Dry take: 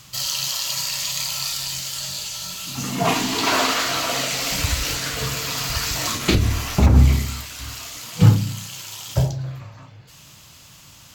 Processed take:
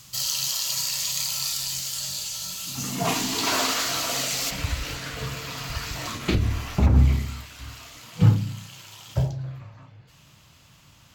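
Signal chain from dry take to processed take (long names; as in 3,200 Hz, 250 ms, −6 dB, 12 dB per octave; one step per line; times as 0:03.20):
bass and treble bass +2 dB, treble +6 dB, from 0:04.49 treble −7 dB
level −6 dB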